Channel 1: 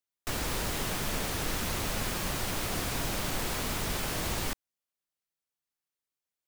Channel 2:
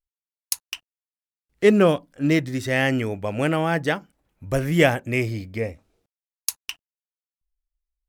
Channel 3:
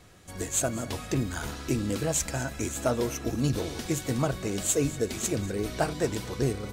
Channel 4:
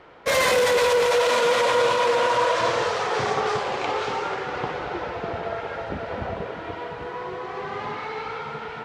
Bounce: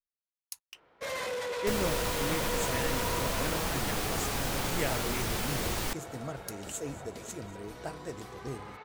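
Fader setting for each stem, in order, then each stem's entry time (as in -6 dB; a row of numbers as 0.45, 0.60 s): -0.5, -17.0, -12.5, -15.5 dB; 1.40, 0.00, 2.05, 0.75 s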